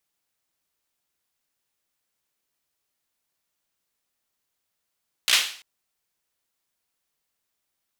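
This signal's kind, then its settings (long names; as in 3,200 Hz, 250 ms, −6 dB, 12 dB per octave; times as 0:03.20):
synth clap length 0.34 s, apart 16 ms, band 3,000 Hz, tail 0.47 s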